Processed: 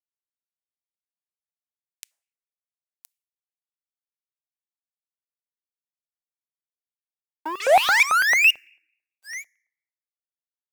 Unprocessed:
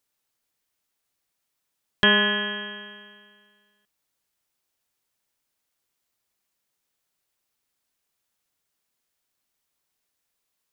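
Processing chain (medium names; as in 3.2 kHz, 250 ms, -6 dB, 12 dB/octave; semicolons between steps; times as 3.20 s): inverse Chebyshev band-stop 740–2100 Hz, stop band 70 dB; tilt EQ +4.5 dB/octave; painted sound rise, 7.45–8.51 s, 300–2900 Hz -24 dBFS; graphic EQ 500/2000/4000 Hz -7/+8/-6 dB; delay 1018 ms -13 dB; painted sound rise, 7.60–8.03 s, 370–2500 Hz -16 dBFS; fuzz box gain 28 dB, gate -30 dBFS; on a send at -24 dB: reverberation RT60 0.70 s, pre-delay 3 ms; on the sum: LFO high-pass square 4.5 Hz 700–2400 Hz; trim -5 dB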